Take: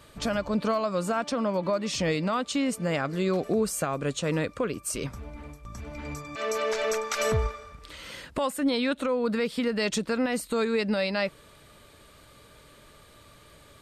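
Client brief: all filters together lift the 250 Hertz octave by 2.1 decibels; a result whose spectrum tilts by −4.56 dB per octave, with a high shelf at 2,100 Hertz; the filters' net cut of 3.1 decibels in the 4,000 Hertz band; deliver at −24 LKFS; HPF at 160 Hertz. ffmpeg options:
ffmpeg -i in.wav -af "highpass=160,equalizer=frequency=250:width_type=o:gain=3.5,highshelf=frequency=2100:gain=4,equalizer=frequency=4000:width_type=o:gain=-8,volume=3.5dB" out.wav

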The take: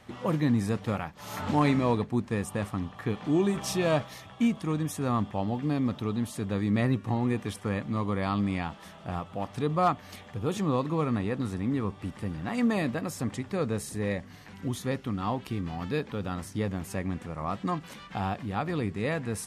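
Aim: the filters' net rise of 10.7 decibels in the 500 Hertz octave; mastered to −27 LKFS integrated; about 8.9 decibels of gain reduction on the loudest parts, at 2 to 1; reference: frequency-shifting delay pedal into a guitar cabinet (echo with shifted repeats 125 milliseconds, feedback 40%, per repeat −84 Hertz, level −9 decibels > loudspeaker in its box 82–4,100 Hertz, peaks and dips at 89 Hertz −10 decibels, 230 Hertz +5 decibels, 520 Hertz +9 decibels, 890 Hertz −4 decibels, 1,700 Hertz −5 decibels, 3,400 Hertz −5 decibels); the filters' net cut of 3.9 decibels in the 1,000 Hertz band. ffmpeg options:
ffmpeg -i in.wav -filter_complex "[0:a]equalizer=frequency=500:width_type=o:gain=8,equalizer=frequency=1000:width_type=o:gain=-8,acompressor=threshold=-35dB:ratio=2,asplit=5[link_01][link_02][link_03][link_04][link_05];[link_02]adelay=125,afreqshift=-84,volume=-9dB[link_06];[link_03]adelay=250,afreqshift=-168,volume=-17dB[link_07];[link_04]adelay=375,afreqshift=-252,volume=-24.9dB[link_08];[link_05]adelay=500,afreqshift=-336,volume=-32.9dB[link_09];[link_01][link_06][link_07][link_08][link_09]amix=inputs=5:normalize=0,highpass=82,equalizer=frequency=89:width_type=q:width=4:gain=-10,equalizer=frequency=230:width_type=q:width=4:gain=5,equalizer=frequency=520:width_type=q:width=4:gain=9,equalizer=frequency=890:width_type=q:width=4:gain=-4,equalizer=frequency=1700:width_type=q:width=4:gain=-5,equalizer=frequency=3400:width_type=q:width=4:gain=-5,lowpass=frequency=4100:width=0.5412,lowpass=frequency=4100:width=1.3066,volume=4.5dB" out.wav

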